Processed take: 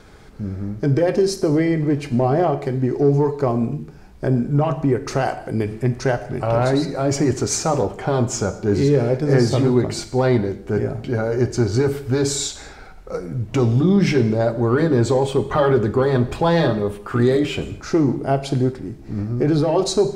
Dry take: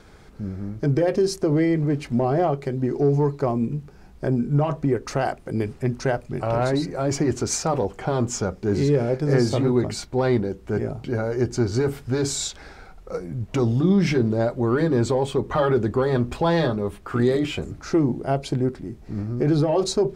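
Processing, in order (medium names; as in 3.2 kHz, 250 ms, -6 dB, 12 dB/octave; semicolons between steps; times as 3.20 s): gated-style reverb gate 270 ms falling, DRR 9.5 dB; trim +3 dB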